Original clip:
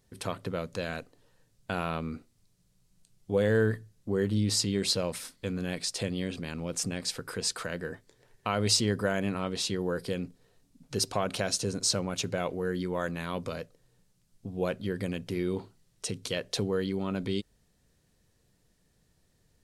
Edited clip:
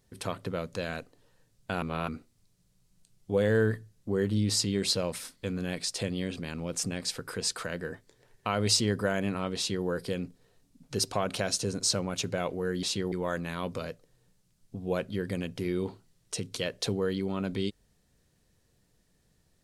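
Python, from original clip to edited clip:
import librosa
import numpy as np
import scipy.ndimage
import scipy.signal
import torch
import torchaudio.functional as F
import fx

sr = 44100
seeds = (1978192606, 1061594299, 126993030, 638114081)

y = fx.edit(x, sr, fx.reverse_span(start_s=1.82, length_s=0.26),
    fx.duplicate(start_s=9.57, length_s=0.29, to_s=12.83), tone=tone)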